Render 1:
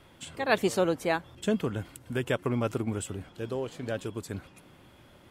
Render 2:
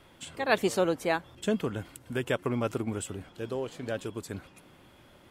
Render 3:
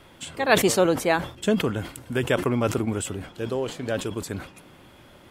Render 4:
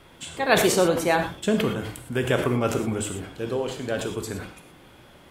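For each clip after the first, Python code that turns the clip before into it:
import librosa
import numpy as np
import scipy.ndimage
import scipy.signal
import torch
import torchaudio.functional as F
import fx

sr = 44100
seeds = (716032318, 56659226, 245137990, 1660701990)

y1 = fx.peak_eq(x, sr, hz=100.0, db=-3.0, octaves=2.0)
y2 = fx.sustainer(y1, sr, db_per_s=130.0)
y2 = F.gain(torch.from_numpy(y2), 6.0).numpy()
y3 = fx.rev_gated(y2, sr, seeds[0], gate_ms=140, shape='flat', drr_db=4.5)
y3 = F.gain(torch.from_numpy(y3), -1.0).numpy()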